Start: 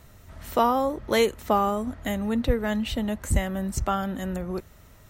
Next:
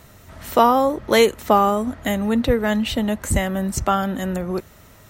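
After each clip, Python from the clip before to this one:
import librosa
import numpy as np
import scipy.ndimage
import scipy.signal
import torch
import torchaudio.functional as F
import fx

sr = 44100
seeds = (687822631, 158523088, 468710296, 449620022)

y = fx.low_shelf(x, sr, hz=64.0, db=-12.0)
y = F.gain(torch.from_numpy(y), 7.0).numpy()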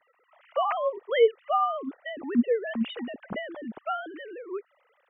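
y = fx.sine_speech(x, sr)
y = F.gain(torch.from_numpy(y), -9.0).numpy()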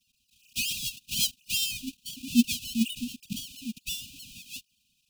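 y = fx.halfwave_hold(x, sr)
y = fx.brickwall_bandstop(y, sr, low_hz=270.0, high_hz=2400.0)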